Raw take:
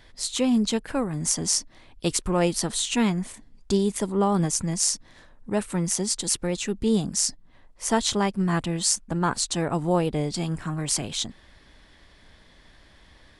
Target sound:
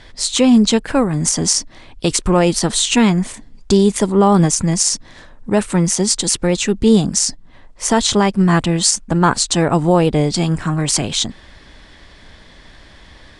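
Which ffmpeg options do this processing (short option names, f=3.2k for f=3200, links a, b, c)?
-af "lowpass=f=9.4k:w=0.5412,lowpass=f=9.4k:w=1.3066,alimiter=level_in=12.5dB:limit=-1dB:release=50:level=0:latency=1,volume=-1.5dB"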